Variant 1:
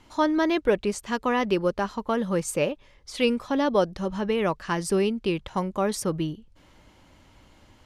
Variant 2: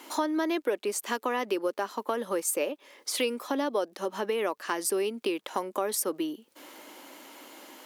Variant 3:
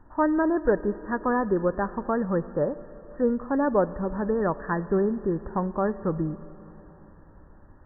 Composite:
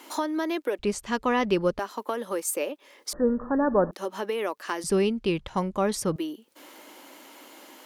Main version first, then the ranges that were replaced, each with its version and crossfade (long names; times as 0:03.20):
2
0:00.79–0:01.79: punch in from 1
0:03.13–0:03.91: punch in from 3
0:04.84–0:06.16: punch in from 1